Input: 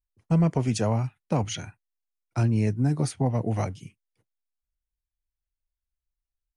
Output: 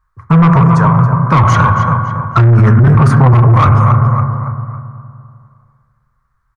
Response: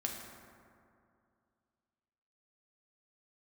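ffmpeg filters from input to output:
-filter_complex "[0:a]firequalizer=gain_entry='entry(140,0);entry(220,-20);entry(330,-20);entry(490,-15);entry(740,-13);entry(1100,11);entry(2700,-20);entry(4200,-15)':delay=0.05:min_phase=1,asettb=1/sr,asplit=3[a][b][c];[a]atrim=end=0.614[d];[b]atrim=start=0.61:end=1.18,asetpts=PTS-STARTPTS,afade=t=in:d=0.004:c=qsin,afade=t=out:st=0.566:d=0.004:c=qsin,acompressor=threshold=-40dB:ratio=6[e];[c]atrim=start=1.176[f];[d][e]acrossfade=d=0.004:c1=hsin:c2=qsin[g];[g][f]acrossfade=d=0.004:c1=qsin:c2=hsin,equalizer=f=1.1k:t=o:w=2.9:g=-9,asplit=2[h][i];[i]adelay=278,lowpass=f=4.6k:p=1,volume=-12.5dB,asplit=2[j][k];[k]adelay=278,lowpass=f=4.6k:p=1,volume=0.42,asplit=2[l][m];[m]adelay=278,lowpass=f=4.6k:p=1,volume=0.42,asplit=2[n][o];[o]adelay=278,lowpass=f=4.6k:p=1,volume=0.42[p];[h][j][l][n][p]amix=inputs=5:normalize=0,asplit=2[q][r];[1:a]atrim=start_sample=2205,lowpass=2.4k[s];[r][s]afir=irnorm=-1:irlink=0,volume=-2.5dB[t];[q][t]amix=inputs=2:normalize=0,asplit=2[u][v];[v]highpass=f=720:p=1,volume=29dB,asoftclip=type=tanh:threshold=-11.5dB[w];[u][w]amix=inputs=2:normalize=0,lowpass=f=1.1k:p=1,volume=-6dB,alimiter=level_in=20dB:limit=-1dB:release=50:level=0:latency=1,volume=-1dB"

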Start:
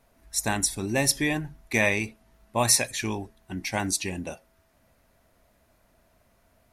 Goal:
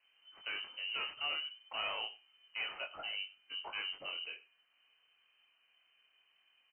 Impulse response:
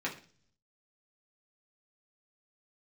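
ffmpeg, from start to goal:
-af "aresample=16000,asoftclip=type=tanh:threshold=-26dB,aresample=44100,flanger=delay=20:depth=7.5:speed=0.3,aecho=1:1:96:0.1,lowpass=f=2.6k:t=q:w=0.5098,lowpass=f=2.6k:t=q:w=0.6013,lowpass=f=2.6k:t=q:w=0.9,lowpass=f=2.6k:t=q:w=2.563,afreqshift=-3100,volume=-5.5dB"

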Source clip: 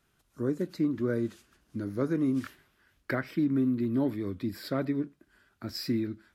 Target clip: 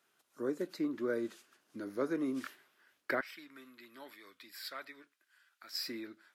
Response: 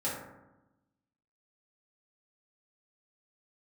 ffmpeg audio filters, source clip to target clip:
-af "asetnsamples=n=441:p=0,asendcmd='3.21 highpass f 1500;5.73 highpass f 610',highpass=390,volume=-1dB"

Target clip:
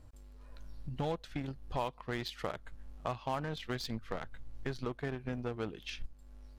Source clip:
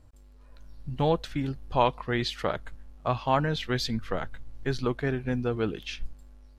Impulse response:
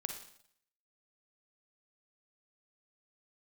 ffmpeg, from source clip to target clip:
-filter_complex "[0:a]asplit=2[a][b];[b]acrusher=bits=3:mix=0:aa=0.5,volume=-4.5dB[c];[a][c]amix=inputs=2:normalize=0,acompressor=threshold=-40dB:ratio=2.5"

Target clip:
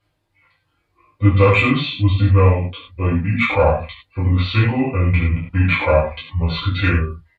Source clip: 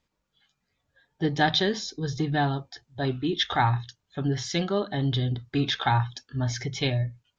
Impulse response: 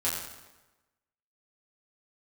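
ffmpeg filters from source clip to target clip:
-filter_complex "[0:a]acontrast=80,asetrate=28595,aresample=44100,atempo=1.54221[a];[1:a]atrim=start_sample=2205,atrim=end_sample=6615,asetrate=52920,aresample=44100[b];[a][b]afir=irnorm=-1:irlink=0,volume=-3dB"

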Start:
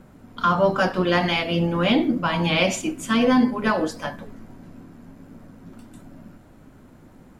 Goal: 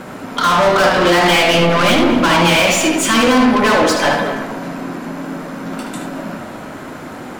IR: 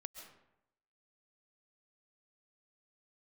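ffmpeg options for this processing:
-filter_complex "[0:a]asplit=2[a][b];[b]highpass=f=720:p=1,volume=30dB,asoftclip=type=tanh:threshold=-7dB[c];[a][c]amix=inputs=2:normalize=0,lowpass=f=6.6k:p=1,volume=-6dB,alimiter=limit=-10.5dB:level=0:latency=1:release=428,asplit=2[d][e];[1:a]atrim=start_sample=2205,highshelf=f=4.2k:g=-9,adelay=75[f];[e][f]afir=irnorm=-1:irlink=0,volume=3.5dB[g];[d][g]amix=inputs=2:normalize=0,volume=1dB"

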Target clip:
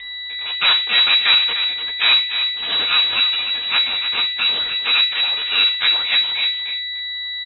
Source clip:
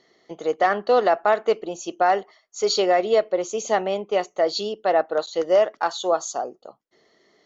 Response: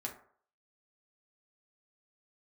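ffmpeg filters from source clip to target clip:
-filter_complex "[0:a]highpass=f=700:w=0.5412,highpass=f=700:w=1.3066,acontrast=59,asplit=2[a][b];[b]asetrate=37084,aresample=44100,atempo=1.18921,volume=-6dB[c];[a][c]amix=inputs=2:normalize=0,aeval=exprs='val(0)+0.0501*sin(2*PI*960*n/s)':c=same,aeval=exprs='abs(val(0))':c=same,asplit=2[d][e];[e]adelay=297.4,volume=-8dB,highshelf=f=4k:g=-6.69[f];[d][f]amix=inputs=2:normalize=0,asplit=2[g][h];[1:a]atrim=start_sample=2205,highshelf=f=2.3k:g=9.5[i];[h][i]afir=irnorm=-1:irlink=0,volume=-0.5dB[j];[g][j]amix=inputs=2:normalize=0,lowpass=f=3.3k:t=q:w=0.5098,lowpass=f=3.3k:t=q:w=0.6013,lowpass=f=3.3k:t=q:w=0.9,lowpass=f=3.3k:t=q:w=2.563,afreqshift=-3900,volume=-5dB"

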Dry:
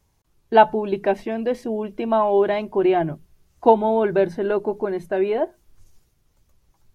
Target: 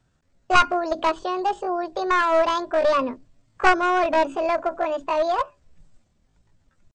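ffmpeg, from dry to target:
-af "bandreject=f=60:t=h:w=6,bandreject=f=120:t=h:w=6,bandreject=f=180:t=h:w=6,aresample=11025,aeval=exprs='clip(val(0),-1,0.126)':c=same,aresample=44100,asetrate=72056,aresample=44100,atempo=0.612027"

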